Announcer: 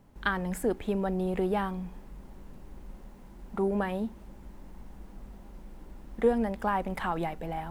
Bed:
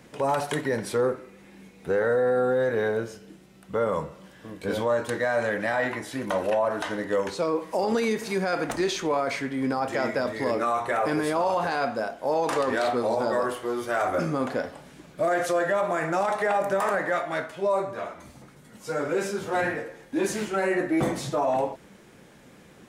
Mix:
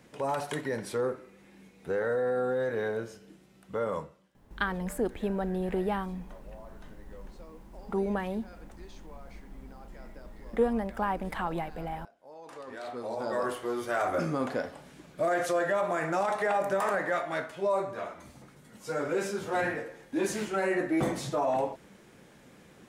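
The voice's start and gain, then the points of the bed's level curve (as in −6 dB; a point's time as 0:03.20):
4.35 s, −1.5 dB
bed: 0:03.97 −6 dB
0:04.37 −26 dB
0:12.24 −26 dB
0:13.48 −3.5 dB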